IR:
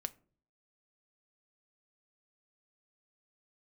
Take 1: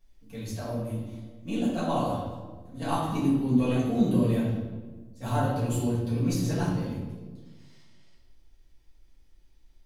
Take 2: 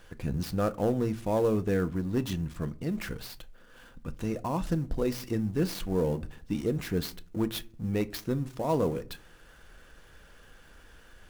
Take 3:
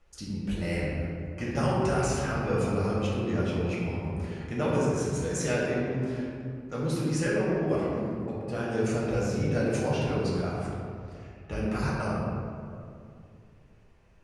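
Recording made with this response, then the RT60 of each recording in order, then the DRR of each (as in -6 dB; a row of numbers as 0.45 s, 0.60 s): 2; 1.3 s, no single decay rate, 2.3 s; -10.0 dB, 11.0 dB, -6.5 dB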